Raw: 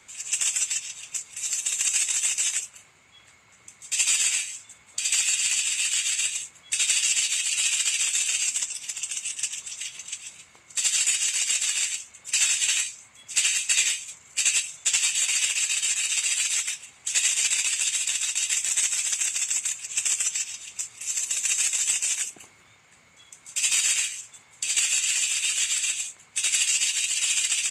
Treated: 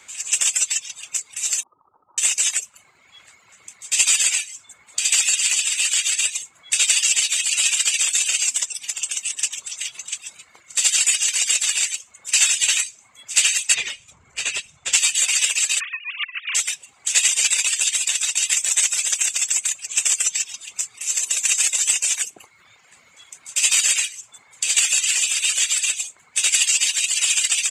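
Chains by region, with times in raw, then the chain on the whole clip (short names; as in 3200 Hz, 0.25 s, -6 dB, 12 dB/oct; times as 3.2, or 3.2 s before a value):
1.63–2.18 compressor, threshold -26 dBFS + rippled Chebyshev low-pass 1300 Hz, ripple 6 dB
13.74–14.93 RIAA curve playback + notches 50/100/150/200/250 Hz
15.8–16.55 sine-wave speech + LPF 2500 Hz + negative-ratio compressor -34 dBFS, ratio -0.5
whole clip: dynamic EQ 510 Hz, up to +5 dB, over -55 dBFS, Q 1.4; reverb removal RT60 0.73 s; low shelf 320 Hz -9 dB; gain +6.5 dB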